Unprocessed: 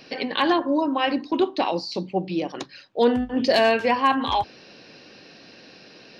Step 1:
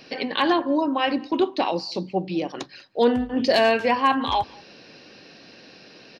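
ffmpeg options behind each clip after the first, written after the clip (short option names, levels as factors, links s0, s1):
-filter_complex "[0:a]asplit=2[s0][s1];[s1]adelay=192.4,volume=0.0501,highshelf=f=4000:g=-4.33[s2];[s0][s2]amix=inputs=2:normalize=0"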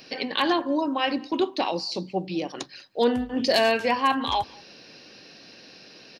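-af "highshelf=f=5400:g=11.5,volume=0.708"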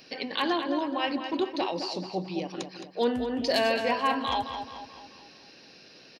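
-filter_complex "[0:a]asplit=2[s0][s1];[s1]adelay=216,lowpass=f=4700:p=1,volume=0.422,asplit=2[s2][s3];[s3]adelay=216,lowpass=f=4700:p=1,volume=0.48,asplit=2[s4][s5];[s5]adelay=216,lowpass=f=4700:p=1,volume=0.48,asplit=2[s6][s7];[s7]adelay=216,lowpass=f=4700:p=1,volume=0.48,asplit=2[s8][s9];[s9]adelay=216,lowpass=f=4700:p=1,volume=0.48,asplit=2[s10][s11];[s11]adelay=216,lowpass=f=4700:p=1,volume=0.48[s12];[s0][s2][s4][s6][s8][s10][s12]amix=inputs=7:normalize=0,volume=0.596"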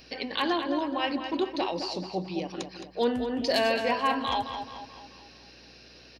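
-af "aeval=exprs='val(0)+0.001*(sin(2*PI*60*n/s)+sin(2*PI*2*60*n/s)/2+sin(2*PI*3*60*n/s)/3+sin(2*PI*4*60*n/s)/4+sin(2*PI*5*60*n/s)/5)':c=same"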